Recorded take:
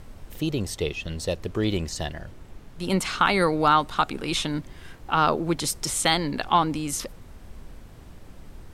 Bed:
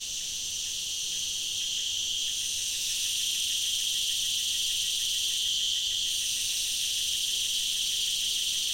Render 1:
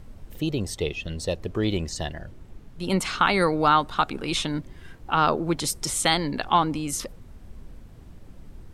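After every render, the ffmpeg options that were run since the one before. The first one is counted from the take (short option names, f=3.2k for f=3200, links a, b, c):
-af "afftdn=nr=6:nf=-46"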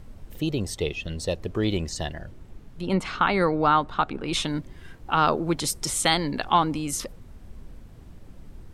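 -filter_complex "[0:a]asettb=1/sr,asplit=3[a][b][c];[a]atrim=end=2.814[d];[b]atrim=start=2.81:end=4.33,asetpts=PTS-STARTPTS,afade=t=in:d=0.004:c=qsin,afade=t=out:st=1.516:d=0.004:c=qsin,aemphasis=mode=reproduction:type=75kf[e];[c]atrim=start=4.326[f];[d][e]acrossfade=d=0.004:c1=hsin:c2=qsin[g];[g][f]acrossfade=d=0.004:c1=qsin:c2=hsin"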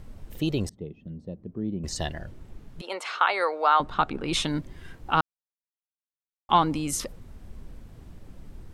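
-filter_complex "[0:a]asettb=1/sr,asplit=3[a][b][c];[a]atrim=end=0.694[d];[b]atrim=start=0.69:end=1.84,asetpts=PTS-STARTPTS,afade=t=in:d=0.004:c=qsin,afade=t=out:st=1.146:d=0.004:c=qsin,bandpass=f=200:t=q:w=2.3[e];[c]atrim=start=1.836[f];[d][e]acrossfade=d=0.004:c1=hsin:c2=qsin[g];[g][f]acrossfade=d=0.004:c1=qsin:c2=hsin,asettb=1/sr,asplit=3[h][i][j];[h]atrim=end=2.814[k];[i]atrim=start=2.81:end=3.8,asetpts=PTS-STARTPTS,afade=t=in:d=0.004:c=qsin,afade=t=out:st=0.986:d=0.004:c=qsin,highpass=f=500:w=0.5412,highpass=f=500:w=1.3066[l];[j]atrim=start=3.796[m];[k][l]acrossfade=d=0.004:c1=hsin:c2=qsin[n];[n][m]acrossfade=d=0.004:c1=qsin:c2=hsin,asplit=3[o][p][q];[o]atrim=end=5.21,asetpts=PTS-STARTPTS,afade=t=out:st=5.206:d=0.004:c=hsin[r];[p]atrim=start=5.21:end=6.49,asetpts=PTS-STARTPTS,volume=0[s];[q]atrim=start=6.49,asetpts=PTS-STARTPTS,afade=t=in:d=0.004:c=hsin[t];[r][s][t]concat=n=3:v=0:a=1"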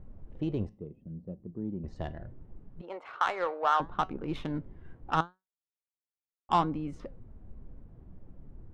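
-af "adynamicsmooth=sensitivity=0.5:basefreq=1.1k,flanger=delay=5.3:depth=4.1:regen=83:speed=0.74:shape=sinusoidal"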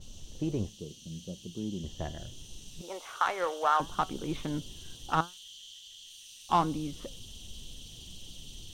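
-filter_complex "[1:a]volume=-21dB[a];[0:a][a]amix=inputs=2:normalize=0"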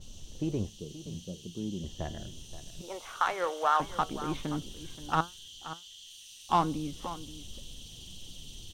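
-af "aecho=1:1:527:0.2"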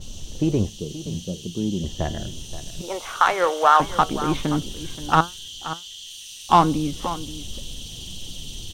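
-af "volume=11dB,alimiter=limit=-3dB:level=0:latency=1"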